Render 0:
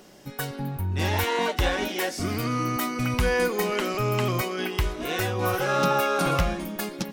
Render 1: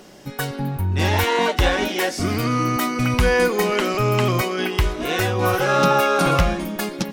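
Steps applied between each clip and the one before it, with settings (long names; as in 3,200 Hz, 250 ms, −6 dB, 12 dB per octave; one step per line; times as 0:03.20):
high-shelf EQ 11,000 Hz −5.5 dB
level +6 dB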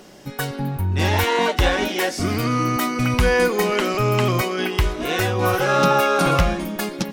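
no processing that can be heard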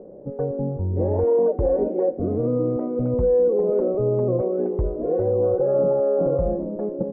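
transistor ladder low-pass 560 Hz, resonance 70%
speech leveller within 4 dB 2 s
brickwall limiter −19 dBFS, peak gain reduction 8.5 dB
level +6 dB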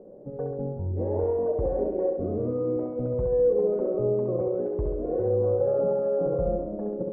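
flutter between parallel walls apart 11.5 metres, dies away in 0.85 s
level −6.5 dB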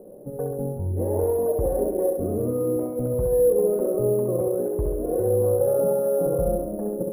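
bad sample-rate conversion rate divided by 4×, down none, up hold
level +3 dB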